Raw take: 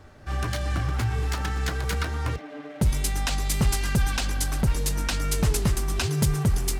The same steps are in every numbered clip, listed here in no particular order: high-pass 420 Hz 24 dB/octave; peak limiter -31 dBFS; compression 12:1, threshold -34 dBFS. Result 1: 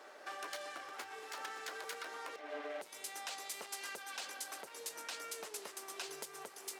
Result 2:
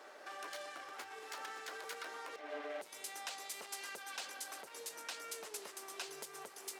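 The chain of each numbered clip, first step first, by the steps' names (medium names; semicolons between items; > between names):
compression > high-pass > peak limiter; compression > peak limiter > high-pass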